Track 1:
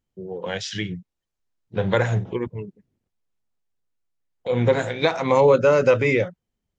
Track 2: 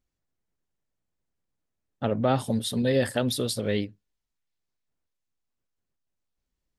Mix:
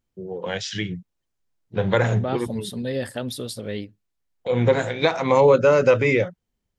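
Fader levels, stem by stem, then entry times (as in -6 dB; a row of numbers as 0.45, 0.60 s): +0.5, -3.5 dB; 0.00, 0.00 s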